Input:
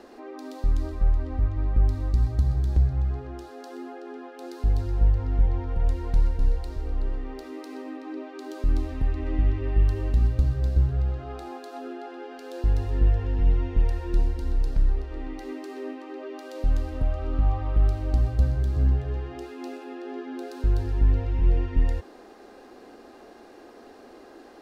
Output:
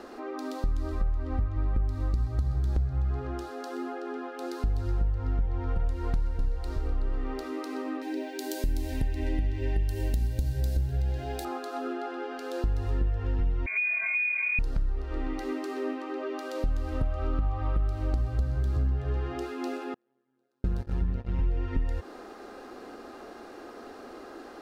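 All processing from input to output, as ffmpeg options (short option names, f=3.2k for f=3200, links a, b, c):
-filter_complex "[0:a]asettb=1/sr,asplit=3[a][b][c];[a]atrim=end=8.024[d];[b]atrim=start=8.02:end=11.45,asetpts=PTS-STARTPTS,afade=t=in:d=0.004:c=qsin,afade=t=out:st=3.426:d=0.004:c=qsin,asuperstop=centerf=1200:order=4:qfactor=2.2,aemphasis=mode=production:type=75fm[e];[c]atrim=start=11.446[f];[d][e]acrossfade=d=0.004:c1=hsin:c2=qsin[g];[g][f]acrossfade=d=0.004:c1=qsin:c2=hsin,asettb=1/sr,asplit=3[h][i][j];[h]atrim=end=13.664[k];[i]atrim=start=13.66:end=14.59,asetpts=PTS-STARTPTS,afade=t=in:d=0.004:c=qsin,afade=t=out:st=0.926:d=0.004:c=qsin,lowpass=f=2.1k:t=q:w=0.5098,lowpass=f=2.1k:t=q:w=0.6013,lowpass=f=2.1k:t=q:w=0.9,lowpass=f=2.1k:t=q:w=2.563,afreqshift=-2500,acompressor=threshold=-28dB:ratio=5:attack=3.2:release=140:knee=1:detection=peak[l];[j]atrim=start=14.586[m];[k][l]acrossfade=d=0.004:c1=hsin:c2=qsin[n];[n][m]acrossfade=d=0.004:c1=qsin:c2=hsin,asettb=1/sr,asplit=3[o][p][q];[o]atrim=end=19.944[r];[p]atrim=start=19.94:end=21.39,asetpts=PTS-STARTPTS,afade=t=in:d=0.004:c=qsin,afade=t=out:st=1.446:d=0.004:c=qsin,agate=range=-40dB:threshold=-27dB:ratio=16:release=100:detection=peak,tremolo=f=130:d=0.71[s];[q]atrim=start=21.386[t];[r][s]acrossfade=d=0.004:c1=hsin:c2=qsin[u];[u][t]acrossfade=d=0.004:c1=qsin:c2=hsin,acompressor=threshold=-27dB:ratio=6,equalizer=f=1.3k:w=4.4:g=7,volume=3dB"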